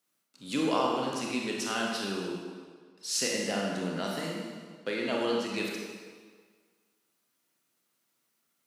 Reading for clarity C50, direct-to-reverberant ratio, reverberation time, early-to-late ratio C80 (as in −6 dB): 0.0 dB, −2.0 dB, 1.7 s, 2.0 dB